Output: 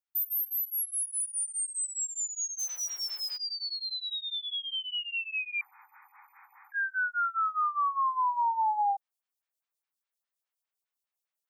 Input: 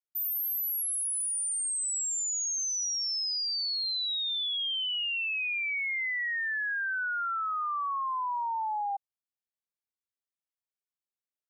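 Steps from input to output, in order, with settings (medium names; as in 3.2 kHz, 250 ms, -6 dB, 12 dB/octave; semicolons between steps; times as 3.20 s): 2.58–3.36 s: formants flattened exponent 0.3; 5.61–6.72 s: room tone; Bessel high-pass 760 Hz, order 2; gain riding; lamp-driven phase shifter 4.9 Hz; trim +3.5 dB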